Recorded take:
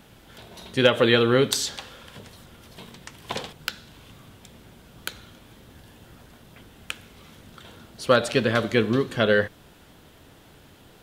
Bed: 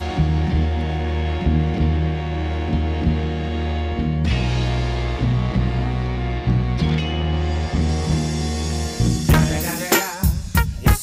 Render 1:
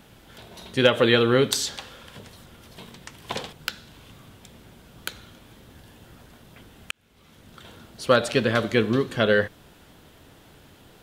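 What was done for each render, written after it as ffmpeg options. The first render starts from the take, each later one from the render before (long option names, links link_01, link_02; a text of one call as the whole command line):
ffmpeg -i in.wav -filter_complex "[0:a]asplit=2[link_01][link_02];[link_01]atrim=end=6.91,asetpts=PTS-STARTPTS,afade=type=out:start_time=6.906:duration=0.004:curve=hsin[link_03];[link_02]atrim=start=6.91,asetpts=PTS-STARTPTS,afade=type=in:duration=0.72[link_04];[link_03][link_04]concat=n=2:v=0:a=1" out.wav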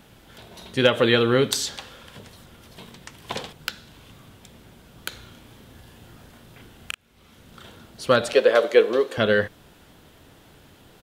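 ffmpeg -i in.wav -filter_complex "[0:a]asplit=3[link_01][link_02][link_03];[link_01]afade=type=out:start_time=5.11:duration=0.02[link_04];[link_02]asplit=2[link_05][link_06];[link_06]adelay=35,volume=-4.5dB[link_07];[link_05][link_07]amix=inputs=2:normalize=0,afade=type=in:start_time=5.11:duration=0.02,afade=type=out:start_time=7.68:duration=0.02[link_08];[link_03]afade=type=in:start_time=7.68:duration=0.02[link_09];[link_04][link_08][link_09]amix=inputs=3:normalize=0,asettb=1/sr,asplit=3[link_10][link_11][link_12];[link_10]atrim=end=8.334[link_13];[link_11]atrim=start=8.33:end=9.18,asetpts=PTS-STARTPTS,afade=type=in:duration=0.004:curve=qsin,afade=type=out:start_time=0.846:duration=0.004:curve=qsin,highpass=frequency=500:width_type=q:width=3.2[link_14];[link_12]atrim=start=9.176[link_15];[link_13][link_14]acrossfade=duration=0.004:curve1=hsin:curve2=qsin[link_16];[link_16][link_15]acrossfade=duration=0.004:curve1=qsin:curve2=hsin" out.wav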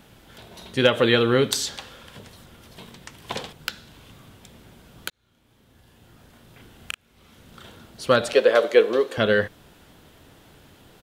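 ffmpeg -i in.wav -filter_complex "[0:a]asplit=2[link_01][link_02];[link_01]atrim=end=5.1,asetpts=PTS-STARTPTS,afade=type=out:start_time=5.096:duration=0.004:curve=hsin[link_03];[link_02]atrim=start=5.1,asetpts=PTS-STARTPTS,afade=type=in:duration=1.83[link_04];[link_03][link_04]concat=n=2:v=0:a=1" out.wav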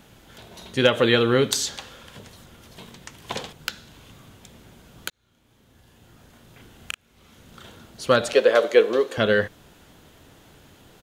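ffmpeg -i in.wav -af "equalizer=frequency=6600:width=5.1:gain=4.5" out.wav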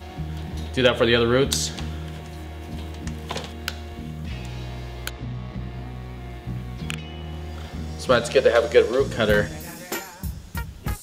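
ffmpeg -i in.wav -i bed.wav -filter_complex "[1:a]volume=-13dB[link_01];[0:a][link_01]amix=inputs=2:normalize=0" out.wav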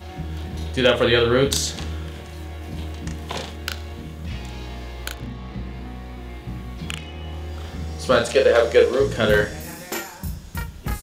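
ffmpeg -i in.wav -filter_complex "[0:a]asplit=2[link_01][link_02];[link_02]adelay=36,volume=-4dB[link_03];[link_01][link_03]amix=inputs=2:normalize=0,aecho=1:1:62|124|186|248:0.0841|0.0438|0.0228|0.0118" out.wav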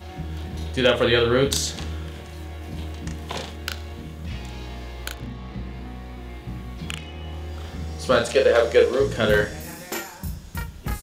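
ffmpeg -i in.wav -af "volume=-1.5dB" out.wav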